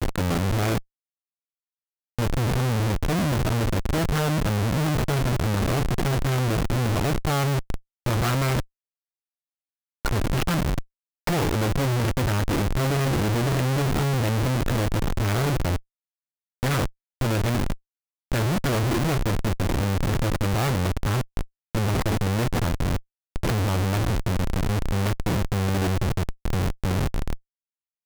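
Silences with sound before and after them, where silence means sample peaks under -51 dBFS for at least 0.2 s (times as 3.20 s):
0.83–2.19 s
7.80–8.06 s
8.65–10.05 s
10.85–11.27 s
15.81–16.63 s
16.91–17.21 s
17.78–18.32 s
21.47–21.75 s
23.02–23.36 s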